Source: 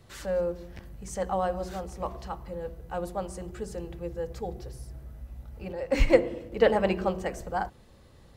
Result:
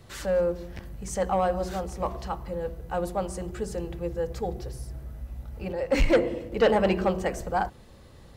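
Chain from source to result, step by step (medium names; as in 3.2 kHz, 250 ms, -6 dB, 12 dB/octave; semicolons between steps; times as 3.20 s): saturation -18.5 dBFS, distortion -10 dB; trim +4.5 dB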